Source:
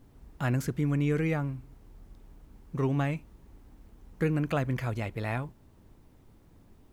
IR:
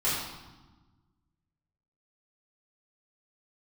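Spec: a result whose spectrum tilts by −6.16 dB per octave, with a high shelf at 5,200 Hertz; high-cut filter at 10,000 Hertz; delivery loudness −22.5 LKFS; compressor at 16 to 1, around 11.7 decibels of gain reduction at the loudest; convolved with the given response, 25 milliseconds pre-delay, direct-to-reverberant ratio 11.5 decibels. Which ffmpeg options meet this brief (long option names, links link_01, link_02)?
-filter_complex "[0:a]lowpass=10000,highshelf=frequency=5200:gain=4.5,acompressor=threshold=-35dB:ratio=16,asplit=2[link_01][link_02];[1:a]atrim=start_sample=2205,adelay=25[link_03];[link_02][link_03]afir=irnorm=-1:irlink=0,volume=-22dB[link_04];[link_01][link_04]amix=inputs=2:normalize=0,volume=18dB"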